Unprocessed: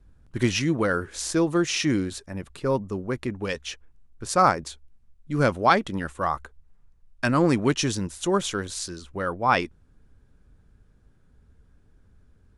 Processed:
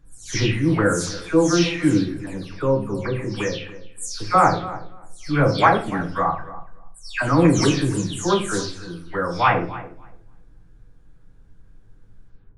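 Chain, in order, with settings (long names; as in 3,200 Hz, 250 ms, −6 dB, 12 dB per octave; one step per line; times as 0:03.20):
every frequency bin delayed by itself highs early, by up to 287 ms
high-shelf EQ 10,000 Hz −3.5 dB
feedback echo with a low-pass in the loop 287 ms, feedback 16%, low-pass 2,400 Hz, level −16 dB
rectangular room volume 37 cubic metres, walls mixed, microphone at 0.42 metres
level +2.5 dB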